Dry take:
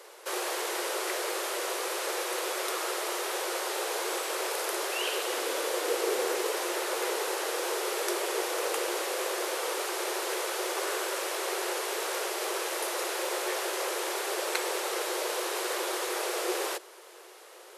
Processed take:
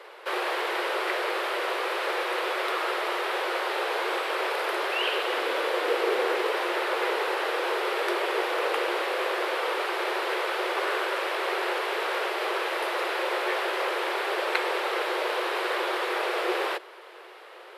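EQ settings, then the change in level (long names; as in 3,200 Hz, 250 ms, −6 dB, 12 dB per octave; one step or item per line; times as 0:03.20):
high-frequency loss of the air 450 metres
spectral tilt +3 dB per octave
+8.0 dB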